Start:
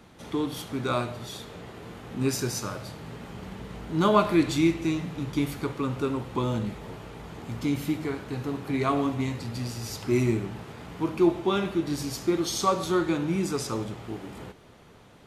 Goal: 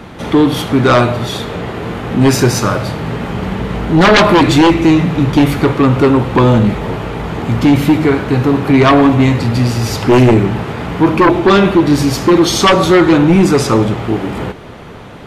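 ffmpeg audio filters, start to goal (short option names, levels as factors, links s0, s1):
-af "bass=f=250:g=0,treble=f=4000:g=-9,aeval=exprs='0.422*sin(PI/2*4.47*val(0)/0.422)':c=same,volume=1.58"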